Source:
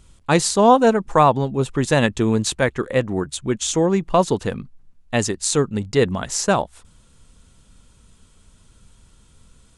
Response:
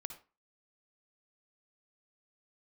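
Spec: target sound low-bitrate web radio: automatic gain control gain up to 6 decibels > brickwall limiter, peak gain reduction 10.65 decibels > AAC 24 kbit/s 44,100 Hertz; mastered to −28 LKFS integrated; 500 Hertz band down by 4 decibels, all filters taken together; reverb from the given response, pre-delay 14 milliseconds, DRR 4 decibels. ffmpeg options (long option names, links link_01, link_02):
-filter_complex "[0:a]equalizer=frequency=500:width_type=o:gain=-5,asplit=2[link_01][link_02];[1:a]atrim=start_sample=2205,adelay=14[link_03];[link_02][link_03]afir=irnorm=-1:irlink=0,volume=-1dB[link_04];[link_01][link_04]amix=inputs=2:normalize=0,dynaudnorm=maxgain=6dB,alimiter=limit=-12dB:level=0:latency=1,volume=-5dB" -ar 44100 -c:a aac -b:a 24k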